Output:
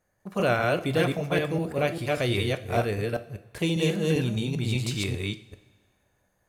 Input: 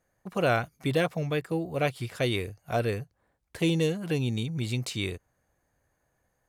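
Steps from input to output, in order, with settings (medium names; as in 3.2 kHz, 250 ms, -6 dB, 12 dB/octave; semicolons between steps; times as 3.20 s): chunks repeated in reverse 198 ms, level -1 dB; two-slope reverb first 0.45 s, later 1.7 s, from -16 dB, DRR 9 dB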